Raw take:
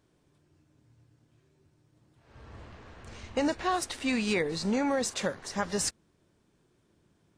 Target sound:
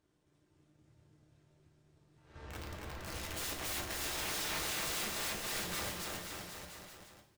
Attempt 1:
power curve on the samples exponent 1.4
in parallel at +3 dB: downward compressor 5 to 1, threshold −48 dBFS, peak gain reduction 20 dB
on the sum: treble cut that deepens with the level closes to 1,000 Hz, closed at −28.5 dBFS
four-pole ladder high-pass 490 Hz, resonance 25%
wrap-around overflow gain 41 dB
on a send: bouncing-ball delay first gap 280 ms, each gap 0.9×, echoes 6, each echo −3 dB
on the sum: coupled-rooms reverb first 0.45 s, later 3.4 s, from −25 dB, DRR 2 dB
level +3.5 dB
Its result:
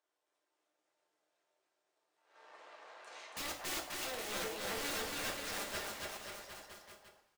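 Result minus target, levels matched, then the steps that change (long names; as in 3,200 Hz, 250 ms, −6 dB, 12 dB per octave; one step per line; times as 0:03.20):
downward compressor: peak gain reduction +6 dB; 500 Hz band +3.5 dB
change: downward compressor 5 to 1, threshold −40.5 dBFS, peak gain reduction 14 dB
remove: four-pole ladder high-pass 490 Hz, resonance 25%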